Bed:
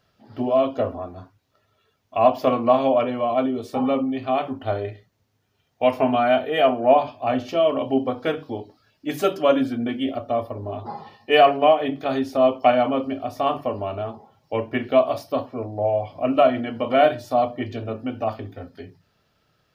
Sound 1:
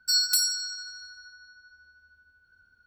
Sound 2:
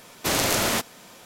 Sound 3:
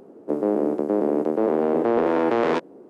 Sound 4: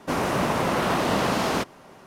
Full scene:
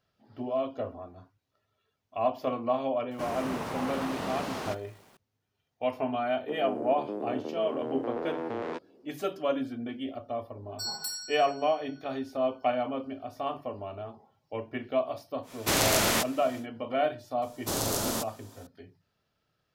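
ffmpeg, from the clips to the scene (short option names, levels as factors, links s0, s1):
-filter_complex "[2:a]asplit=2[s0][s1];[0:a]volume=0.282[s2];[4:a]acrusher=bits=7:mix=0:aa=0.000001[s3];[s1]equalizer=f=2200:t=o:w=1.1:g=-12.5[s4];[s3]atrim=end=2.06,asetpts=PTS-STARTPTS,volume=0.266,afade=t=in:d=0.004:c=hsin,afade=t=out:st=2.056:d=0.004:c=hsin,adelay=3110[s5];[3:a]atrim=end=2.89,asetpts=PTS-STARTPTS,volume=0.2,afade=t=in:d=0.004:c=hsin,afade=t=out:st=2.886:d=0.004:c=hsin,adelay=6190[s6];[1:a]atrim=end=2.86,asetpts=PTS-STARTPTS,volume=0.251,afade=t=in:d=0.004:c=hsin,afade=t=out:st=2.856:d=0.004:c=hsin,adelay=10710[s7];[s0]atrim=end=1.25,asetpts=PTS-STARTPTS,volume=0.794,afade=t=in:d=0.1,afade=t=out:st=1.15:d=0.1,adelay=15420[s8];[s4]atrim=end=1.25,asetpts=PTS-STARTPTS,volume=0.531,afade=t=in:d=0.004:c=hsin,afade=t=out:st=1.246:d=0.004:c=hsin,adelay=17420[s9];[s2][s5][s6][s7][s8][s9]amix=inputs=6:normalize=0"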